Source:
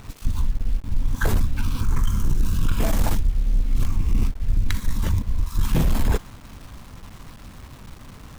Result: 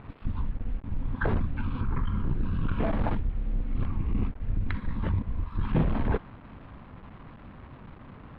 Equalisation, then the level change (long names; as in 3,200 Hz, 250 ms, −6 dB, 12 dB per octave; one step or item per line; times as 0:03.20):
moving average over 7 samples
high-frequency loss of the air 400 metres
low-shelf EQ 78 Hz −11 dB
0.0 dB